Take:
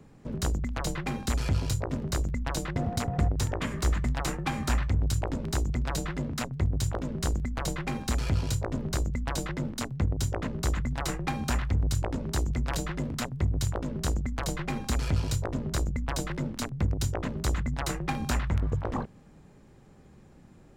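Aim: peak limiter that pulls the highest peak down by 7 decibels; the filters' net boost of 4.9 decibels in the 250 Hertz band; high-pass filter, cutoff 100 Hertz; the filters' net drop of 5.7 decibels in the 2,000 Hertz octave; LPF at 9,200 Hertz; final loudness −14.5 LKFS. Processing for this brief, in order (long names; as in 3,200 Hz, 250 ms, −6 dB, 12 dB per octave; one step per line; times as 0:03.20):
high-pass filter 100 Hz
low-pass filter 9,200 Hz
parametric band 250 Hz +6.5 dB
parametric band 2,000 Hz −7.5 dB
level +18 dB
brickwall limiter −3 dBFS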